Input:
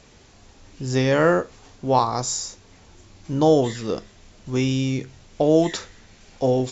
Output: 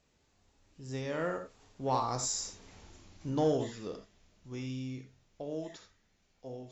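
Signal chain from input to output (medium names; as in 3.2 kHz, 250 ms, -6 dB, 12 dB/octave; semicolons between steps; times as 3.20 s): Doppler pass-by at 2.67 s, 7 m/s, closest 2.6 m; gated-style reverb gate 100 ms rising, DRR 6.5 dB; in parallel at -5 dB: saturation -20.5 dBFS, distortion -13 dB; on the sum: trim -8.5 dB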